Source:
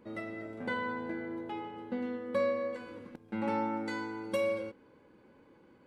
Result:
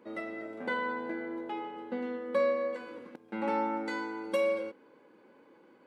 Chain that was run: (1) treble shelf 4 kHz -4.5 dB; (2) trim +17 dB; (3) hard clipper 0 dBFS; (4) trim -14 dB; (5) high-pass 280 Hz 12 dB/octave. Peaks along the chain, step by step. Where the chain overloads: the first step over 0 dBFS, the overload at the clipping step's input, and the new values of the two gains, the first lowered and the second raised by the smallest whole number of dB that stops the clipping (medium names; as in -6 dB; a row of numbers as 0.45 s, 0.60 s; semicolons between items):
-20.0 dBFS, -3.0 dBFS, -3.0 dBFS, -17.0 dBFS, -18.5 dBFS; nothing clips